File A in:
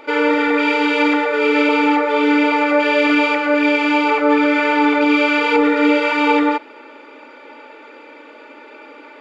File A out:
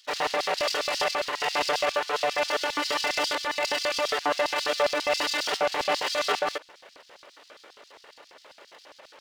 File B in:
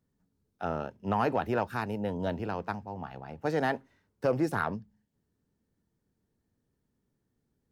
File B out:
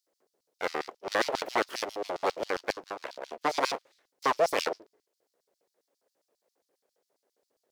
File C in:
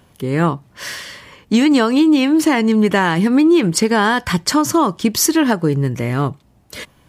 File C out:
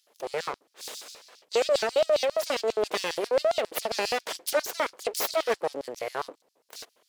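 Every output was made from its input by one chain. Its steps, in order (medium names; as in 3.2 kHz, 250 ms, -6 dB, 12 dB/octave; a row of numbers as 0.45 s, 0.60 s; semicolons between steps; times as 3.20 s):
full-wave rectifier; LFO high-pass square 7.4 Hz 490–4700 Hz; peak normalisation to -12 dBFS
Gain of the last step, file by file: -7.0 dB, +6.0 dB, -9.0 dB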